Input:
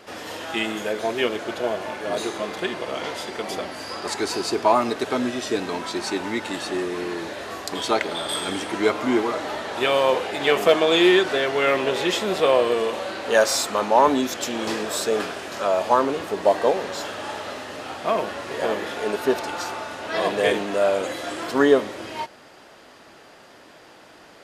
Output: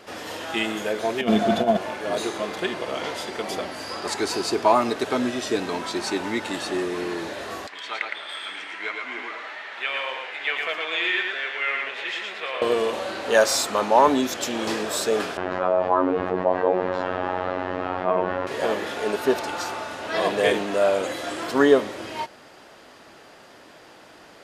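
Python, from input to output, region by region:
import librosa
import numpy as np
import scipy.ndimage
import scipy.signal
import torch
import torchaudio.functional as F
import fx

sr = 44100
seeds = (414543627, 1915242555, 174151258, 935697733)

y = fx.chain(x, sr, fx.over_compress(threshold_db=-27.0, ratio=-1.0),
    fx.low_shelf(hz=180.0, db=7.5),
    fx.small_body(hz=(210.0, 690.0, 3500.0), ring_ms=100, db=17), at=(1.21, 1.77))
y = fx.chain(y, sr, fx.bandpass_q(hz=2100.0, q=2.1),
    fx.echo_single(ms=113, db=-3.5), at=(7.67, 12.62))
y = fx.chain(y, sr, fx.lowpass(hz=1500.0, slope=12),
    fx.robotise(hz=91.6),
    fx.env_flatten(amount_pct=50), at=(15.37, 18.47))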